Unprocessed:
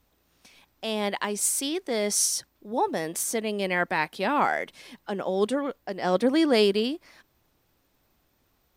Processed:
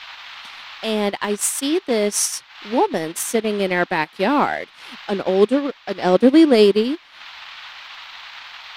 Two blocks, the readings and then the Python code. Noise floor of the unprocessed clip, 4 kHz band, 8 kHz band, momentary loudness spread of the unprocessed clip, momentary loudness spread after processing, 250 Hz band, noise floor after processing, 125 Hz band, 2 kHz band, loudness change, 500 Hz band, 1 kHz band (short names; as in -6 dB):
-70 dBFS, +5.0 dB, +3.0 dB, 11 LU, 21 LU, +9.5 dB, -48 dBFS, +7.5 dB, +5.0 dB, +7.5 dB, +8.5 dB, +5.5 dB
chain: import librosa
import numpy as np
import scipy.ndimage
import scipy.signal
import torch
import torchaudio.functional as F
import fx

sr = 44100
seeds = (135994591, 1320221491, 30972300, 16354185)

y = fx.dmg_noise_band(x, sr, seeds[0], low_hz=810.0, high_hz=4000.0, level_db=-41.0)
y = fx.dynamic_eq(y, sr, hz=310.0, q=0.94, threshold_db=-36.0, ratio=4.0, max_db=7)
y = fx.transient(y, sr, attack_db=3, sustain_db=-11)
y = y * 10.0 ** (3.5 / 20.0)